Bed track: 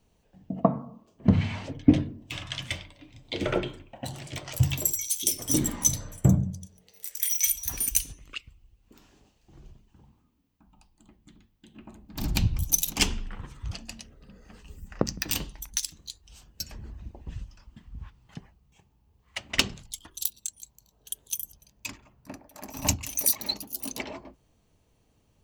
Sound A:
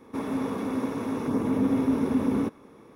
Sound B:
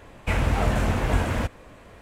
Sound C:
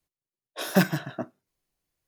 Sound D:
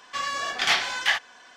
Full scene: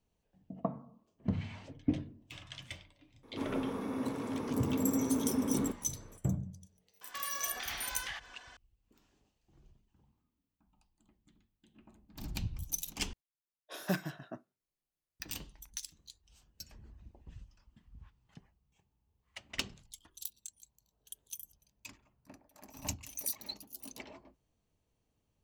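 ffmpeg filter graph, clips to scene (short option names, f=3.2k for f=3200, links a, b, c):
-filter_complex "[0:a]volume=-13dB[a];[4:a]acompressor=threshold=-34dB:ratio=6:attack=3.2:release=140:knee=1:detection=peak[b];[a]asplit=2[c][d];[c]atrim=end=13.134[e];[3:a]atrim=end=2.07,asetpts=PTS-STARTPTS,volume=-12.5dB[f];[d]atrim=start=15.196[g];[1:a]atrim=end=2.95,asetpts=PTS-STARTPTS,volume=-7.5dB,afade=t=in:d=0.004:c=hsin,afade=t=out:st=2.946:d=0.004:c=hsin,adelay=3230[h];[b]atrim=end=1.56,asetpts=PTS-STARTPTS,volume=-4.5dB,afade=t=in:d=0.004:c=hsin,afade=t=out:st=1.556:d=0.004:c=hsin,adelay=7010[i];[e][f]acrossfade=d=0.004:c1=hsin:c2=hsin[j];[j][g]acrossfade=d=0.004:c1=hsin:c2=hsin[k];[k][h][i]amix=inputs=3:normalize=0"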